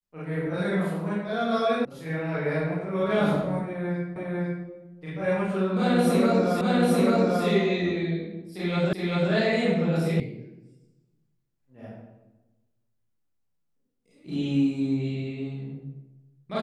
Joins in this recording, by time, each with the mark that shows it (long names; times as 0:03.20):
0:01.85: cut off before it has died away
0:04.16: the same again, the last 0.5 s
0:06.61: the same again, the last 0.84 s
0:08.93: the same again, the last 0.39 s
0:10.20: cut off before it has died away